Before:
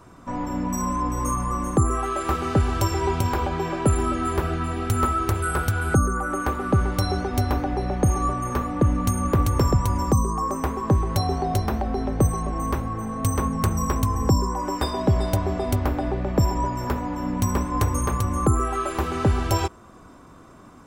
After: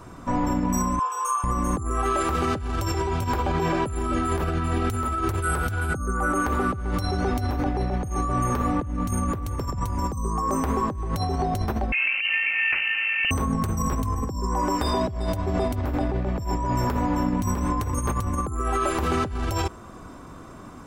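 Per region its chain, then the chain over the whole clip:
0.99–1.44 s: brick-wall FIR high-pass 390 Hz + peaking EQ 6.3 kHz -4.5 dB 0.29 oct + static phaser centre 3 kHz, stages 8
11.92–13.31 s: high-pass 120 Hz 24 dB/octave + peaking EQ 600 Hz +6.5 dB 0.31 oct + frequency inversion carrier 2.9 kHz
whole clip: bass shelf 110 Hz +3 dB; peak limiter -18 dBFS; compressor with a negative ratio -27 dBFS, ratio -0.5; trim +3 dB

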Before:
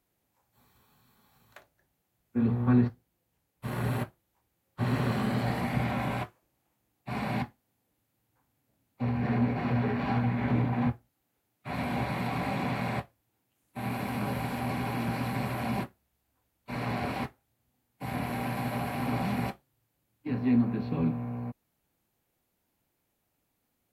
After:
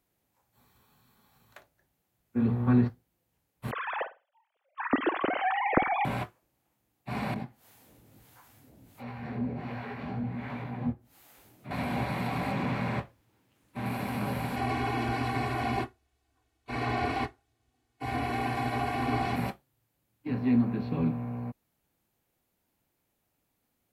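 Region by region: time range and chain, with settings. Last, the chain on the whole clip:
3.71–6.05 s: formants replaced by sine waves + flutter echo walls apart 8.6 m, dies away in 0.25 s
7.34–11.71 s: upward compressor, threshold -29 dBFS + harmonic tremolo 1.4 Hz, crossover 630 Hz + detune thickener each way 42 cents
12.52–13.86 s: companding laws mixed up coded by mu + low-pass 3.2 kHz 6 dB/octave + peaking EQ 720 Hz -5.5 dB 0.25 oct
14.56–19.36 s: low-pass 7.8 kHz + comb 2.7 ms, depth 98%
whole clip: none

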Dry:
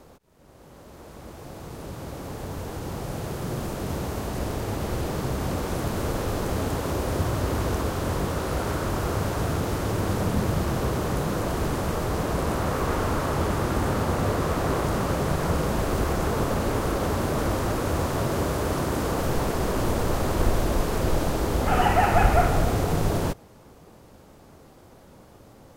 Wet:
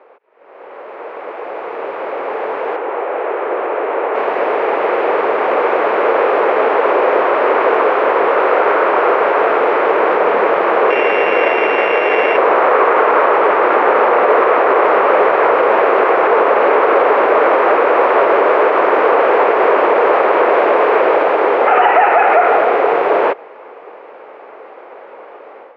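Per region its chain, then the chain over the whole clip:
2.76–4.15 s: high-pass 270 Hz 24 dB/octave + distance through air 270 m
10.90–12.37 s: sorted samples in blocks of 16 samples + high-pass 47 Hz
whole clip: elliptic band-pass 430–2400 Hz, stop band 70 dB; level rider gain up to 11 dB; loudness maximiser +9.5 dB; trim -1 dB

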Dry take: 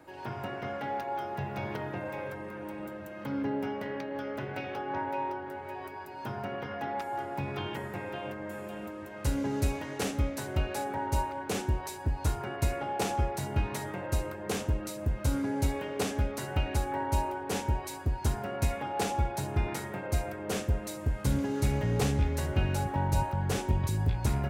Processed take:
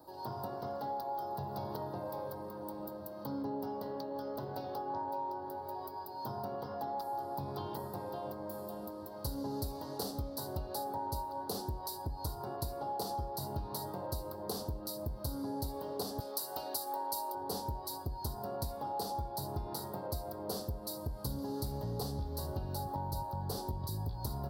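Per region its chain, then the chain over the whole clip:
16.20–17.35 s: high-pass 370 Hz + peaking EQ 11 kHz +10.5 dB 2.7 oct
whole clip: FFT filter 310 Hz 0 dB, 1 kHz +5 dB, 2.4 kHz -25 dB, 4.5 kHz +13 dB, 6.7 kHz -5 dB, 14 kHz +15 dB; compression, threshold -30 dBFS; trim -4.5 dB

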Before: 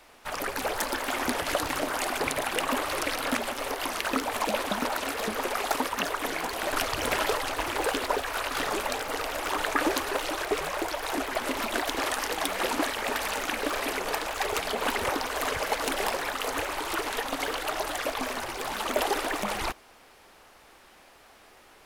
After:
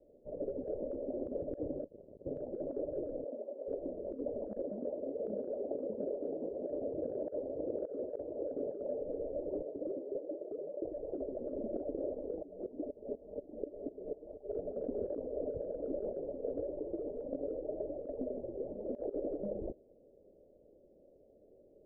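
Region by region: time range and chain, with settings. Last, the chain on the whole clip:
1.84–2.26 s: ring modulator 54 Hz + frequency inversion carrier 3.4 kHz + transformer saturation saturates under 3.2 kHz
3.24–3.68 s: high-pass 520 Hz + transformer saturation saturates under 4 kHz
4.62–9.01 s: high-pass 190 Hz 6 dB/octave + delay 619 ms -6 dB
9.62–10.85 s: ladder high-pass 190 Hz, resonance 20% + overload inside the chain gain 29 dB
12.42–14.49 s: band-stop 530 Hz, Q 8.8 + sawtooth tremolo in dB swelling 4.1 Hz, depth 18 dB
whole clip: Chebyshev low-pass 590 Hz, order 6; bass shelf 250 Hz -10.5 dB; compressor with a negative ratio -38 dBFS, ratio -0.5; trim +1.5 dB

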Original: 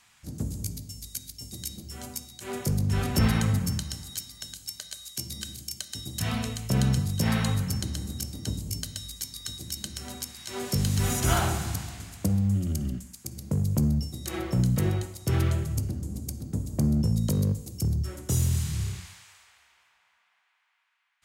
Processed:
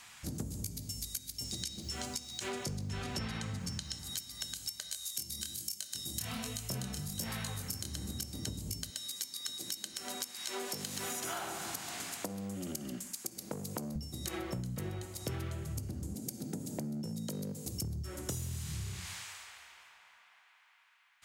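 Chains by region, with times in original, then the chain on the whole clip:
1.44–3.99 s: low-pass 5.4 kHz + treble shelf 3.8 kHz +10.5 dB + word length cut 10-bit, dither none
4.91–7.95 s: treble shelf 5.2 kHz +9.5 dB + chorus 1.2 Hz, delay 19.5 ms, depth 7.8 ms
8.90–13.96 s: high-pass 290 Hz + transformer saturation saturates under 870 Hz
16.15–17.66 s: high-pass 150 Hz 24 dB/octave + band-stop 1.1 kHz, Q 5.1 + compression 2:1, threshold -33 dBFS
whole clip: bass shelf 220 Hz -5.5 dB; compression 10:1, threshold -43 dBFS; trim +7 dB

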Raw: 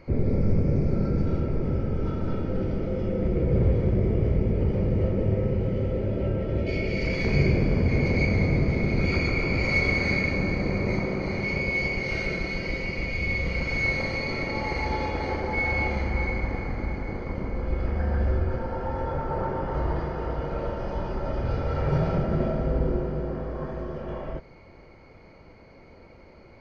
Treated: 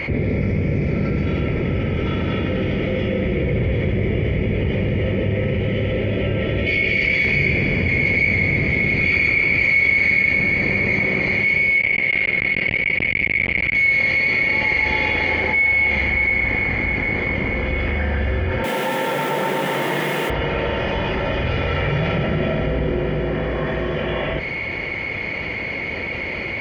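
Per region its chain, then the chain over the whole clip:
11.78–13.75 s: low-pass 3.2 kHz + transformer saturation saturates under 410 Hz
18.64–20.30 s: steep high-pass 150 Hz 48 dB/octave + word length cut 8-bit, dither triangular
whole clip: high-pass 62 Hz; high-order bell 2.5 kHz +15 dB 1.2 oct; level flattener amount 70%; trim -8 dB

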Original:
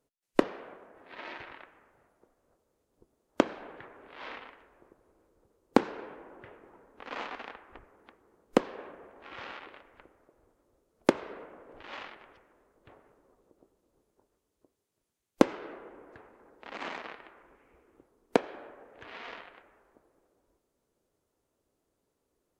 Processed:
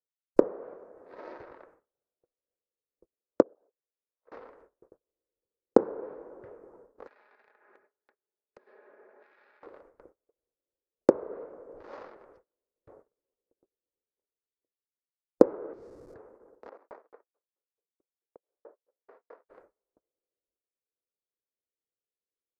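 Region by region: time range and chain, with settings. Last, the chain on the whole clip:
3.42–4.32 s: resonances exaggerated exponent 2 + gate -41 dBFS, range -29 dB + compression 12:1, threshold -54 dBFS
7.07–9.63 s: cabinet simulation 460–4500 Hz, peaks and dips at 480 Hz -9 dB, 690 Hz -5 dB, 1.1 kHz -7 dB, 1.7 kHz +9 dB, 2.4 kHz +8 dB, 3.8 kHz +4 dB + comb 4.8 ms, depth 46% + compression 10:1, threshold -51 dBFS
15.73–16.14 s: Gaussian low-pass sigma 11 samples + Schmitt trigger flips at -57.5 dBFS
16.69–19.49 s: three-band isolator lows -24 dB, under 280 Hz, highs -16 dB, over 2.1 kHz + inverted gate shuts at -23 dBFS, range -26 dB + sawtooth tremolo in dB decaying 4.6 Hz, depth 35 dB
whole clip: gate -58 dBFS, range -29 dB; low-pass that closes with the level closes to 1.4 kHz, closed at -30.5 dBFS; FFT filter 260 Hz 0 dB, 500 Hz +10 dB, 740 Hz 0 dB, 1.3 kHz -2 dB, 3.1 kHz -20 dB, 4.8 kHz -5 dB; trim -2 dB

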